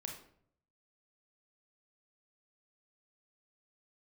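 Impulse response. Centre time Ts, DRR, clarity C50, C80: 27 ms, 1.5 dB, 5.5 dB, 10.0 dB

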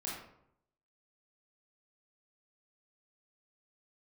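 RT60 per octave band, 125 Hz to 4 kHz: 0.90, 0.80, 0.75, 0.70, 0.55, 0.40 seconds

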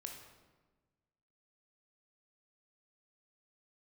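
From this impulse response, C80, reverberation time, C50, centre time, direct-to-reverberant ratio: 7.0 dB, 1.3 s, 4.5 dB, 38 ms, 2.0 dB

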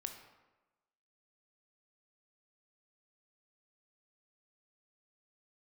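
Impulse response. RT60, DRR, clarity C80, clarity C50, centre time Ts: 1.1 s, 5.0 dB, 9.5 dB, 7.0 dB, 24 ms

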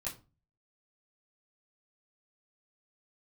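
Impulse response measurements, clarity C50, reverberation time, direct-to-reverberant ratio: 12.5 dB, 0.30 s, −10.5 dB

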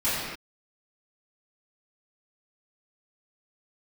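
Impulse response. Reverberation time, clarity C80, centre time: non-exponential decay, 0.0 dB, 100 ms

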